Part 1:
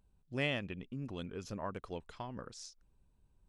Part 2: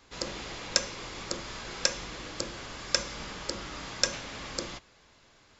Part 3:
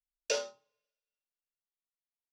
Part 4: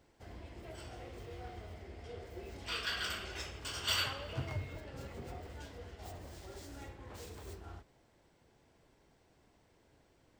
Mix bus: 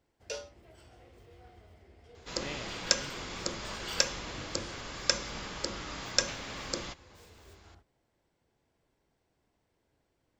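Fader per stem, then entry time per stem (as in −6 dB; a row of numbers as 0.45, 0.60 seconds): −8.5, −0.5, −7.5, −8.5 decibels; 2.05, 2.15, 0.00, 0.00 seconds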